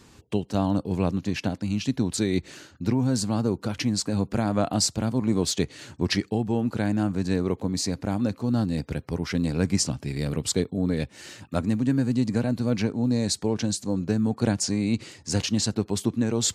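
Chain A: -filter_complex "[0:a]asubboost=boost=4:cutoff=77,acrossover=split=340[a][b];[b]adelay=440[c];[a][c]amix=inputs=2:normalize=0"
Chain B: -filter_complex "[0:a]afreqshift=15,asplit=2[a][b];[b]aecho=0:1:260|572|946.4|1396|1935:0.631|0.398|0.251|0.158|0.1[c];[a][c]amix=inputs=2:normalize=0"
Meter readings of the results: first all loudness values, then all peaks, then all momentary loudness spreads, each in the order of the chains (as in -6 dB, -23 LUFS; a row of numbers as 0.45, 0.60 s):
-28.0, -24.0 LUFS; -9.0, -9.0 dBFS; 4, 4 LU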